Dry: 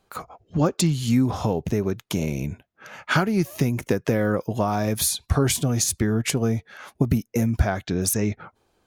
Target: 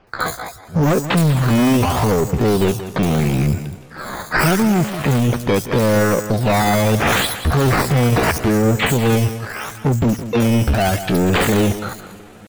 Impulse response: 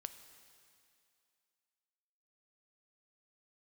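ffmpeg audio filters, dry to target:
-filter_complex "[0:a]asplit=2[link_01][link_02];[link_02]alimiter=limit=-14.5dB:level=0:latency=1:release=353,volume=0.5dB[link_03];[link_01][link_03]amix=inputs=2:normalize=0,volume=20dB,asoftclip=hard,volume=-20dB,aresample=32000,aresample=44100,acrusher=samples=11:mix=1:aa=0.000001:lfo=1:lforange=11:lforate=1.1,asplit=2[link_04][link_05];[1:a]atrim=start_sample=2205,asetrate=27783,aresample=44100,adelay=130[link_06];[link_05][link_06]afir=irnorm=-1:irlink=0,volume=-10dB[link_07];[link_04][link_07]amix=inputs=2:normalize=0,atempo=0.71,acrossover=split=4600[link_08][link_09];[link_09]adelay=70[link_10];[link_08][link_10]amix=inputs=2:normalize=0,volume=7.5dB"

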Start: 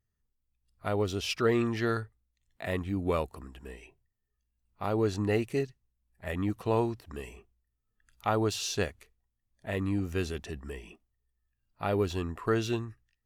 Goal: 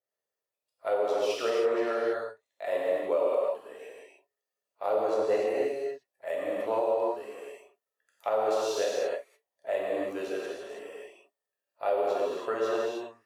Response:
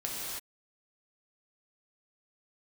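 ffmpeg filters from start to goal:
-filter_complex "[0:a]highpass=frequency=550:width_type=q:width=4.9[link_01];[1:a]atrim=start_sample=2205[link_02];[link_01][link_02]afir=irnorm=-1:irlink=0,alimiter=limit=-13dB:level=0:latency=1:release=205,adynamicequalizer=threshold=0.00708:dfrequency=2000:dqfactor=0.7:tfrequency=2000:tqfactor=0.7:attack=5:release=100:ratio=0.375:range=2.5:mode=cutabove:tftype=highshelf,volume=-4.5dB"

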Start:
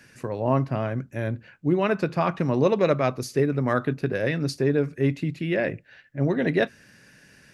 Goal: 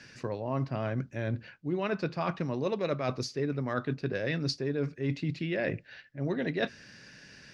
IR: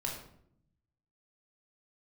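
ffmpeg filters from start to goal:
-af "areverse,acompressor=threshold=-28dB:ratio=6,areverse,lowpass=frequency=5000:width_type=q:width=2"

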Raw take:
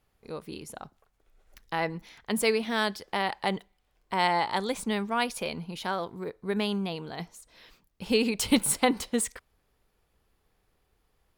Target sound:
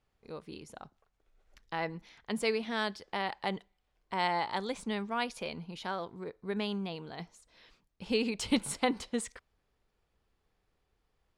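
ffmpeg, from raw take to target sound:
ffmpeg -i in.wav -af "lowpass=7300,volume=-5.5dB" out.wav

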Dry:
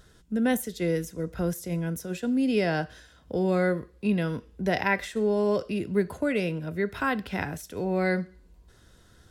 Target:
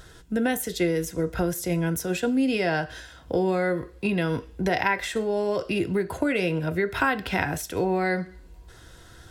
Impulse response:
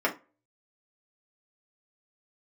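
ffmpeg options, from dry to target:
-filter_complex "[0:a]equalizer=frequency=220:width=4:gain=-7.5,acompressor=threshold=-29dB:ratio=6,asplit=2[link_01][link_02];[1:a]atrim=start_sample=2205,asetrate=66150,aresample=44100[link_03];[link_02][link_03]afir=irnorm=-1:irlink=0,volume=-16dB[link_04];[link_01][link_04]amix=inputs=2:normalize=0,volume=8dB"

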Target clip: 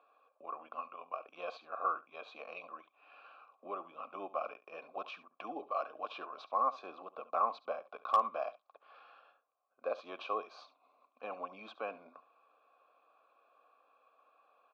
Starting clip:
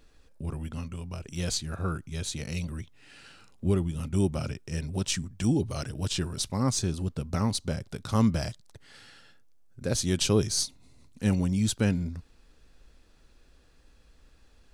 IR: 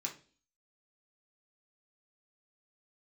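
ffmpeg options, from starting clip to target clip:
-filter_complex "[0:a]alimiter=limit=-18.5dB:level=0:latency=1:release=281,asplit=3[link_01][link_02][link_03];[link_01]bandpass=frequency=730:width_type=q:width=8,volume=0dB[link_04];[link_02]bandpass=frequency=1090:width_type=q:width=8,volume=-6dB[link_05];[link_03]bandpass=frequency=2440:width_type=q:width=8,volume=-9dB[link_06];[link_04][link_05][link_06]amix=inputs=3:normalize=0,highpass=frequency=360:width=0.5412,highpass=frequency=360:width=1.3066,equalizer=frequency=380:width_type=q:width=4:gain=-10,equalizer=frequency=730:width_type=q:width=4:gain=-7,equalizer=frequency=1100:width_type=q:width=4:gain=7,equalizer=frequency=2000:width_type=q:width=4:gain=-9,equalizer=frequency=2900:width_type=q:width=4:gain=-10,lowpass=frequency=3100:width=0.5412,lowpass=frequency=3100:width=1.3066,asplit=2[link_07][link_08];[link_08]aecho=0:1:70:0.141[link_09];[link_07][link_09]amix=inputs=2:normalize=0,asoftclip=type=hard:threshold=-32.5dB,volume=13dB"

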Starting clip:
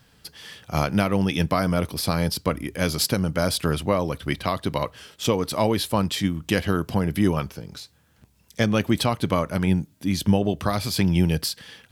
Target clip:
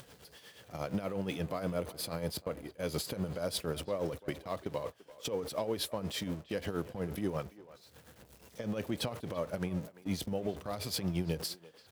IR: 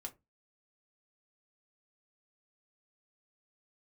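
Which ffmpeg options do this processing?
-filter_complex "[0:a]aeval=exprs='val(0)+0.5*0.0335*sgn(val(0))':channel_layout=same,asettb=1/sr,asplit=3[link_01][link_02][link_03];[link_01]atrim=end=1.044[link_04];[link_02]atrim=start=1.04:end=3.45,asetpts=PTS-STARTPTS,afade=type=in:duration=0.004:curve=qsin,afade=type=out:start_time=2.406:duration=0.004:curve=qsin,bandreject=frequency=5500:width=9.1[link_05];[link_03]atrim=start=3.446[link_06];[link_04][link_05]acrossfade=duration=0.004:curve1=hsin:curve2=qsin[link_07];[link_07][link_06]acrossfade=duration=0.004:curve1=qsin:curve2=hsin,agate=range=-26dB:threshold=-25dB:ratio=16:detection=peak,highpass=52,equalizer=frequency=510:width=1.5:gain=9.5,acompressor=threshold=-16dB:ratio=6,alimiter=limit=-15dB:level=0:latency=1:release=132,acompressor=mode=upward:threshold=-34dB:ratio=2.5,tremolo=f=8.4:d=0.61,asplit=2[link_08][link_09];[link_09]adelay=340,highpass=300,lowpass=3400,asoftclip=type=hard:threshold=-24dB,volume=-16dB[link_10];[link_08][link_10]amix=inputs=2:normalize=0,volume=-7.5dB"

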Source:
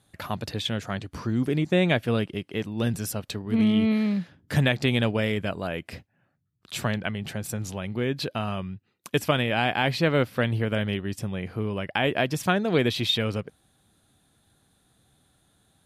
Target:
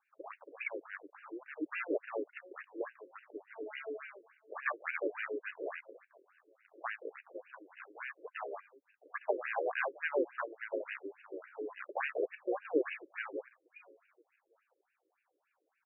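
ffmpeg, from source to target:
ffmpeg -i in.wav -filter_complex "[0:a]aecho=1:1:664|1328:0.0668|0.0221,asplit=2[link_01][link_02];[link_02]asetrate=29433,aresample=44100,atempo=1.49831,volume=-2dB[link_03];[link_01][link_03]amix=inputs=2:normalize=0,afftfilt=real='re*between(b*sr/1024,400*pow(2100/400,0.5+0.5*sin(2*PI*3.5*pts/sr))/1.41,400*pow(2100/400,0.5+0.5*sin(2*PI*3.5*pts/sr))*1.41)':imag='im*between(b*sr/1024,400*pow(2100/400,0.5+0.5*sin(2*PI*3.5*pts/sr))/1.41,400*pow(2100/400,0.5+0.5*sin(2*PI*3.5*pts/sr))*1.41)':win_size=1024:overlap=0.75,volume=-6.5dB" out.wav

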